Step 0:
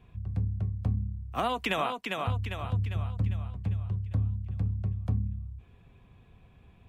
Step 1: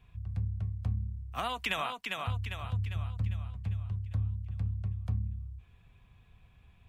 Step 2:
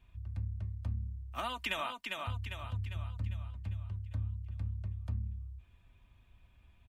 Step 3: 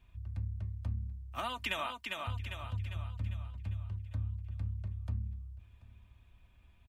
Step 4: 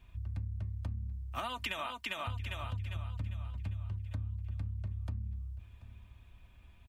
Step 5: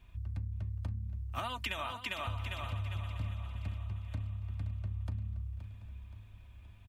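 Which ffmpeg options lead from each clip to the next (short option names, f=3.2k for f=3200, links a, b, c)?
-af "equalizer=f=340:t=o:w=2.5:g=-11.5"
-af "aecho=1:1:3.3:0.51,volume=-4dB"
-af "aecho=1:1:734:0.0944"
-af "acompressor=threshold=-39dB:ratio=5,volume=4.5dB"
-af "aecho=1:1:523|1046|1569|2092|2615|3138:0.251|0.133|0.0706|0.0374|0.0198|0.0105"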